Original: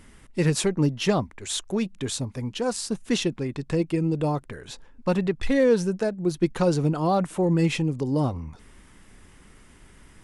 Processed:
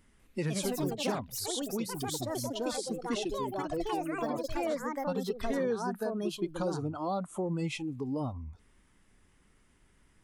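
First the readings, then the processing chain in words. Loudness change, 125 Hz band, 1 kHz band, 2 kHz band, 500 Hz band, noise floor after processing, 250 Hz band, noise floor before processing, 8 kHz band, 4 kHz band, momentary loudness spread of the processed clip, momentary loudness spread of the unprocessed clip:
-9.0 dB, -12.5 dB, -4.5 dB, -8.0 dB, -8.0 dB, -65 dBFS, -9.5 dB, -52 dBFS, -6.0 dB, -7.0 dB, 3 LU, 9 LU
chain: spectral noise reduction 14 dB; ever faster or slower copies 196 ms, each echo +4 st, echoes 3; compression 2:1, threshold -38 dBFS, peak gain reduction 12.5 dB

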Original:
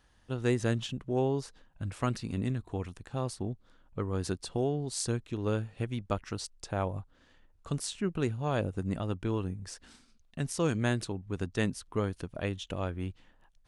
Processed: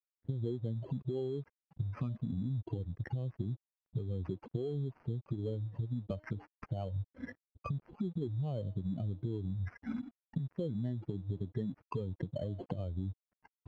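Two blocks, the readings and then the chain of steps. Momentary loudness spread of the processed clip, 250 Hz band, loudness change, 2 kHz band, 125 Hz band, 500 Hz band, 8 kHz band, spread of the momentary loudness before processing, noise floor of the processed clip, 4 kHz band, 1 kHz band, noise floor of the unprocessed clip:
6 LU, -5.5 dB, -5.5 dB, -15.0 dB, -2.0 dB, -8.0 dB, under -35 dB, 9 LU, under -85 dBFS, under -15 dB, -12.5 dB, -65 dBFS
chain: spectral contrast enhancement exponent 2.6; recorder AGC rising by 80 dB/s; high-pass 100 Hz 24 dB/octave; low-pass that closes with the level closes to 1.9 kHz, closed at -28.5 dBFS; peaking EQ 4.1 kHz -8 dB 0.41 oct; de-hum 308.5 Hz, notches 3; compression, threshold -31 dBFS, peak gain reduction 8 dB; crossover distortion -59 dBFS; vibrato 3.7 Hz 60 cents; sample-and-hold 12×; tape spacing loss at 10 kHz 38 dB

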